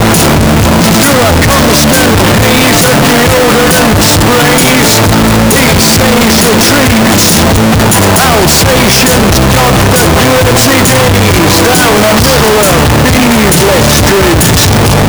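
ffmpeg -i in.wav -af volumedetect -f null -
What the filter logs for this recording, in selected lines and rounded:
mean_volume: -5.3 dB
max_volume: -2.7 dB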